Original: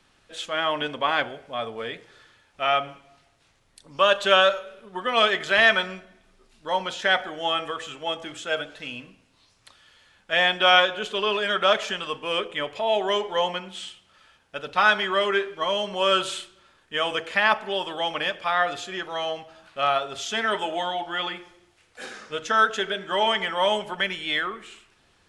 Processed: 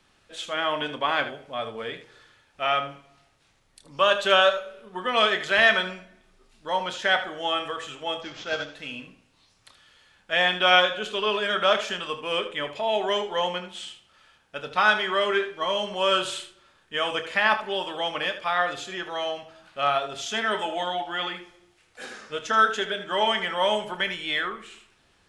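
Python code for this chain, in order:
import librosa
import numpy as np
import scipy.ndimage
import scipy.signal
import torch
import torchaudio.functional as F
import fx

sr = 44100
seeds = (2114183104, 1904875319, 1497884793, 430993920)

y = fx.cvsd(x, sr, bps=32000, at=(8.21, 8.74))
y = fx.room_early_taps(y, sr, ms=(28, 77), db=(-11.5, -12.0))
y = y * librosa.db_to_amplitude(-1.5)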